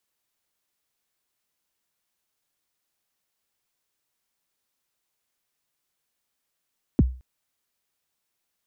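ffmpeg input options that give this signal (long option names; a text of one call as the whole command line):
ffmpeg -f lavfi -i "aevalsrc='0.299*pow(10,-3*t/0.36)*sin(2*PI*(350*0.031/log(63/350)*(exp(log(63/350)*min(t,0.031)/0.031)-1)+63*max(t-0.031,0)))':duration=0.22:sample_rate=44100" out.wav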